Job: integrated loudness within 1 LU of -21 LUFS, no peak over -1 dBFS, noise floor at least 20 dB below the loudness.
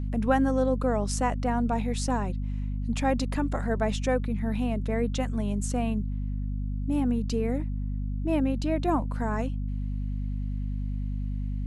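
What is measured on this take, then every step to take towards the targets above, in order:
hum 50 Hz; harmonics up to 250 Hz; hum level -28 dBFS; loudness -29.0 LUFS; peak -10.5 dBFS; loudness target -21.0 LUFS
-> de-hum 50 Hz, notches 5; gain +8 dB

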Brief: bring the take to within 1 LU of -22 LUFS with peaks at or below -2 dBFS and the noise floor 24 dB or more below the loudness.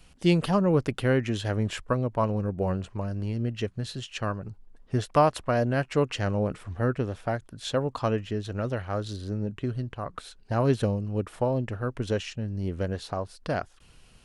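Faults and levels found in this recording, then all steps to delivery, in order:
loudness -28.5 LUFS; peak -9.0 dBFS; loudness target -22.0 LUFS
-> gain +6.5 dB

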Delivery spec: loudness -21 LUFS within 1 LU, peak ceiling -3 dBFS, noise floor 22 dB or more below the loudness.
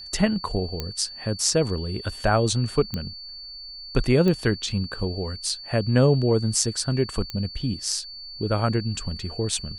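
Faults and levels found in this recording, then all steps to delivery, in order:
clicks 4; steady tone 4500 Hz; tone level -37 dBFS; loudness -24.5 LUFS; peak -4.5 dBFS; loudness target -21.0 LUFS
-> de-click; notch 4500 Hz, Q 30; gain +3.5 dB; limiter -3 dBFS

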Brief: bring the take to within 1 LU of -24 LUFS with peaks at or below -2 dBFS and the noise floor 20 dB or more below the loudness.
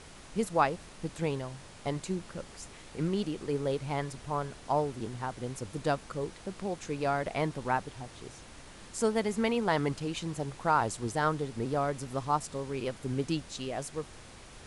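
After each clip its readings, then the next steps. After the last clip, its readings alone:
noise floor -50 dBFS; noise floor target -53 dBFS; loudness -33.0 LUFS; peak -12.0 dBFS; loudness target -24.0 LUFS
-> noise print and reduce 6 dB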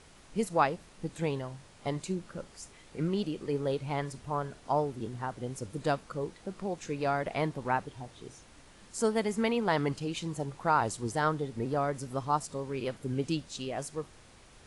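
noise floor -56 dBFS; loudness -33.0 LUFS; peak -12.0 dBFS; loudness target -24.0 LUFS
-> gain +9 dB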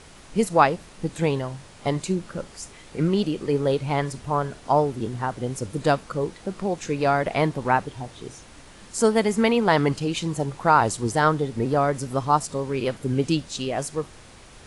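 loudness -24.0 LUFS; peak -3.0 dBFS; noise floor -47 dBFS

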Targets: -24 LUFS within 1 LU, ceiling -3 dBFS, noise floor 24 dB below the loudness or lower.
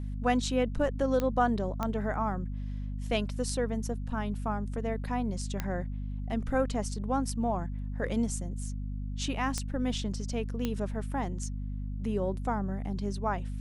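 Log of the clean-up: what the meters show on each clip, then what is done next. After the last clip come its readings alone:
clicks 5; hum 50 Hz; harmonics up to 250 Hz; hum level -33 dBFS; loudness -32.5 LUFS; peak -13.0 dBFS; loudness target -24.0 LUFS
-> de-click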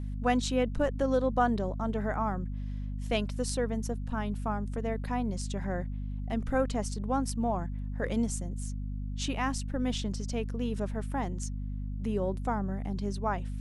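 clicks 0; hum 50 Hz; harmonics up to 250 Hz; hum level -33 dBFS
-> notches 50/100/150/200/250 Hz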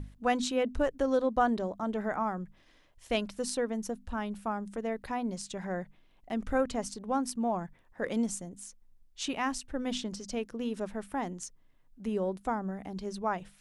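hum none; loudness -33.5 LUFS; peak -14.5 dBFS; loudness target -24.0 LUFS
-> gain +9.5 dB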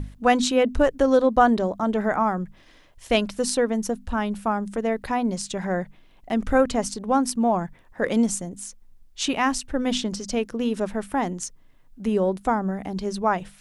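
loudness -24.0 LUFS; peak -5.0 dBFS; noise floor -53 dBFS

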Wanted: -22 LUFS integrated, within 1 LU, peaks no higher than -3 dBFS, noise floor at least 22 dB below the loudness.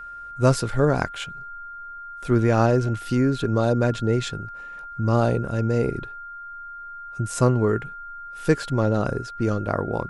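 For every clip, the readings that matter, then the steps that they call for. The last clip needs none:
steady tone 1400 Hz; tone level -35 dBFS; loudness -23.0 LUFS; peak -4.5 dBFS; loudness target -22.0 LUFS
-> notch 1400 Hz, Q 30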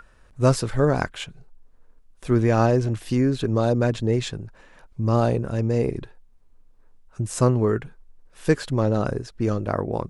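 steady tone none; loudness -23.0 LUFS; peak -4.5 dBFS; loudness target -22.0 LUFS
-> gain +1 dB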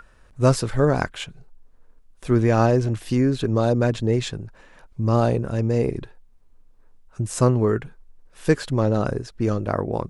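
loudness -22.0 LUFS; peak -3.5 dBFS; noise floor -53 dBFS

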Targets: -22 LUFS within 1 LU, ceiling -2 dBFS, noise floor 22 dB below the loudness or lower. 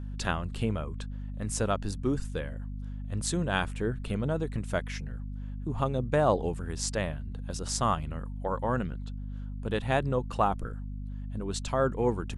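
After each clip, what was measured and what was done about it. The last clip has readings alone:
hum 50 Hz; harmonics up to 250 Hz; hum level -34 dBFS; loudness -31.5 LUFS; peak -12.0 dBFS; loudness target -22.0 LUFS
-> notches 50/100/150/200/250 Hz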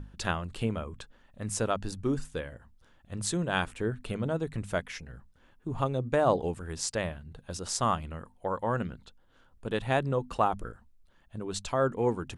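hum none; loudness -31.5 LUFS; peak -12.0 dBFS; loudness target -22.0 LUFS
-> gain +9.5 dB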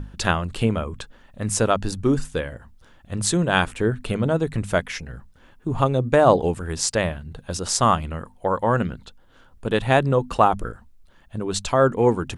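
loudness -22.0 LUFS; peak -2.5 dBFS; noise floor -52 dBFS

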